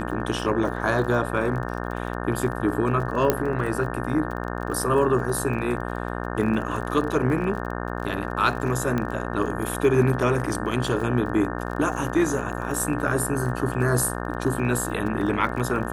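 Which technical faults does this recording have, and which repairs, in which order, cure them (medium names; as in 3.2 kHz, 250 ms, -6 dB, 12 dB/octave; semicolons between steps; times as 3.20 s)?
buzz 60 Hz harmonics 30 -30 dBFS
crackle 33 per s -32 dBFS
3.30 s: pop -5 dBFS
8.98 s: pop -14 dBFS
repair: de-click; de-hum 60 Hz, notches 30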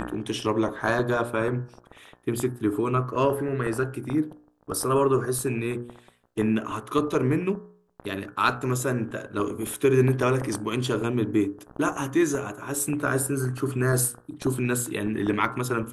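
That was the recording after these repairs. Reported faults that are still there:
nothing left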